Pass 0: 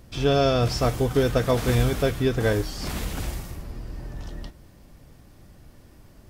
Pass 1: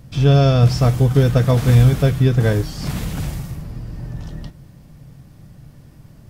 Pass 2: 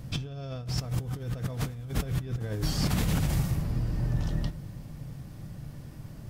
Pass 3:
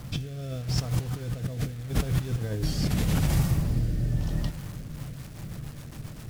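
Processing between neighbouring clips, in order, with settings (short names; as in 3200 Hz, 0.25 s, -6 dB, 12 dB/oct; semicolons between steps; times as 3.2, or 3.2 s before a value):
bell 140 Hz +13.5 dB 0.89 oct; notch 370 Hz, Q 12; gain +1.5 dB
negative-ratio compressor -25 dBFS, ratio -1; on a send at -19.5 dB: reverb RT60 1.8 s, pre-delay 4 ms; on the sum: gain -6.5 dB
requantised 8-bit, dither none; rotary speaker horn 0.8 Hz, later 7.5 Hz, at 4.55; gain +4 dB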